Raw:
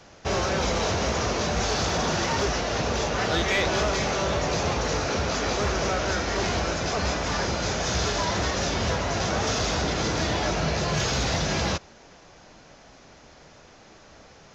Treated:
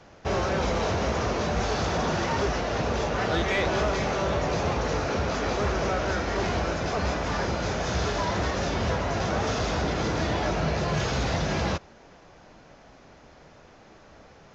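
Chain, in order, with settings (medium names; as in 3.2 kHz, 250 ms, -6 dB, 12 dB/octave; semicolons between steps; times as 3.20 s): treble shelf 3.7 kHz -11 dB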